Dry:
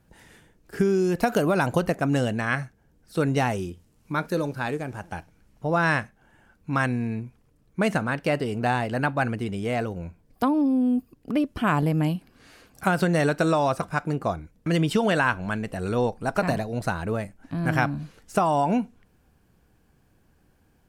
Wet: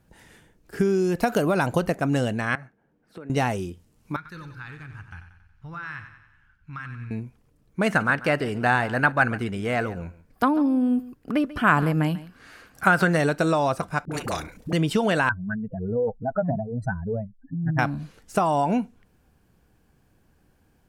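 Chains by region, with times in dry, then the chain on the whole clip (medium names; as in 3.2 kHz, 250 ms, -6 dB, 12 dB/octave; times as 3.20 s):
2.55–3.30 s: three-band isolator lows -20 dB, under 150 Hz, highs -17 dB, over 2.6 kHz + compression, threshold -37 dBFS
4.16–7.11 s: FFT filter 100 Hz 0 dB, 230 Hz -17 dB, 350 Hz -19 dB, 620 Hz -28 dB, 1.3 kHz -2 dB, 5.1 kHz -10 dB, 8.1 kHz -18 dB + compression 2.5:1, threshold -35 dBFS + feedback delay 92 ms, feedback 52%, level -9.5 dB
7.86–13.17 s: peaking EQ 1.5 kHz +8.5 dB 1 oct + delay 140 ms -18 dB
14.05–14.73 s: AM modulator 29 Hz, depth 40% + phase dispersion highs, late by 65 ms, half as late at 450 Hz + spectrum-flattening compressor 2:1
15.29–17.79 s: spectral contrast enhancement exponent 3 + loudspeaker Doppler distortion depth 0.11 ms
whole clip: none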